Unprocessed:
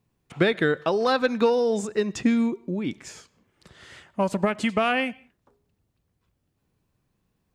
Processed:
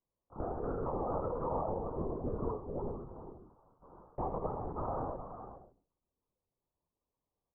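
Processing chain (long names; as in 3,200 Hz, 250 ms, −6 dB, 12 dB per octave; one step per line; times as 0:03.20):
ceiling on every frequency bin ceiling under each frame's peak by 15 dB
mains-hum notches 60/120/180/240/300/360/420/480 Hz
noise gate −49 dBFS, range −16 dB
Butterworth low-pass 1,200 Hz 72 dB per octave
downward compressor 3 to 1, threshold −35 dBFS, peak gain reduction 13.5 dB
ring modulation 22 Hz
double-tracking delay 17 ms −2 dB
single-tap delay 416 ms −10.5 dB
reverb whose tail is shaped and stops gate 190 ms flat, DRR 0.5 dB
linear-prediction vocoder at 8 kHz whisper
level −2.5 dB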